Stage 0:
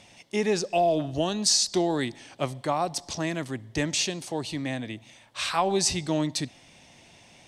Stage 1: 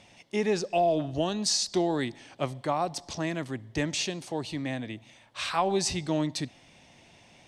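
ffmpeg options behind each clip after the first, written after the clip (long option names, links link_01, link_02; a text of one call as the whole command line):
ffmpeg -i in.wav -af "highshelf=frequency=5700:gain=-7,volume=-1.5dB" out.wav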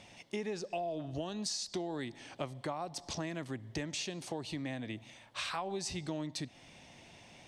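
ffmpeg -i in.wav -af "acompressor=threshold=-36dB:ratio=5" out.wav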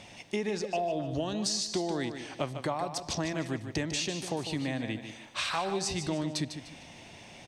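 ffmpeg -i in.wav -af "aecho=1:1:150|300|450|600:0.355|0.117|0.0386|0.0128,volume=6dB" out.wav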